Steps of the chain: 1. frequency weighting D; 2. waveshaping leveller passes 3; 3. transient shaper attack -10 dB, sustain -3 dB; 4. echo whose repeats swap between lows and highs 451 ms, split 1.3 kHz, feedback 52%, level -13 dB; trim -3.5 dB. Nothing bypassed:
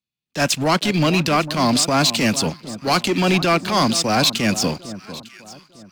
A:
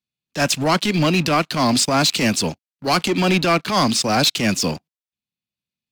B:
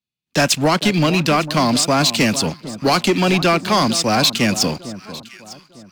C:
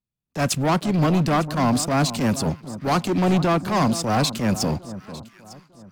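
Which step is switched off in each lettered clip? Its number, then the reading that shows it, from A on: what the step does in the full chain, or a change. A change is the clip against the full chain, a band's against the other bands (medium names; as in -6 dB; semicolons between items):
4, echo-to-direct -15.0 dB to none; 3, momentary loudness spread change -5 LU; 1, 4 kHz band -7.0 dB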